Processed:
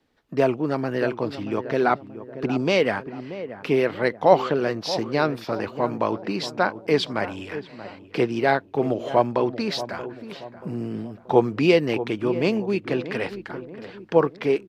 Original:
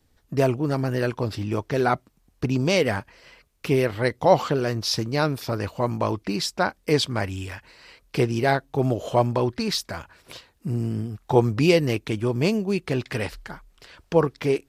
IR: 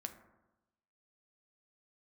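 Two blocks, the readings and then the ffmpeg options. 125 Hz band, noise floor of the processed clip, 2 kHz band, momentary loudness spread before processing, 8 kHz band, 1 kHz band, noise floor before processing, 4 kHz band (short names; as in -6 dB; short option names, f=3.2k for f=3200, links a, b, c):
-6.5 dB, -48 dBFS, +1.5 dB, 12 LU, -9.0 dB, +1.5 dB, -64 dBFS, -2.5 dB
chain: -filter_complex "[0:a]acrossover=split=170 4300:gain=0.141 1 0.178[a][b][c];[a][b][c]amix=inputs=3:normalize=0,asplit=2[d][e];[e]adelay=631,lowpass=f=970:p=1,volume=-11.5dB,asplit=2[f][g];[g]adelay=631,lowpass=f=970:p=1,volume=0.51,asplit=2[h][i];[i]adelay=631,lowpass=f=970:p=1,volume=0.51,asplit=2[j][k];[k]adelay=631,lowpass=f=970:p=1,volume=0.51,asplit=2[l][m];[m]adelay=631,lowpass=f=970:p=1,volume=0.51[n];[f][h][j][l][n]amix=inputs=5:normalize=0[o];[d][o]amix=inputs=2:normalize=0,volume=1.5dB"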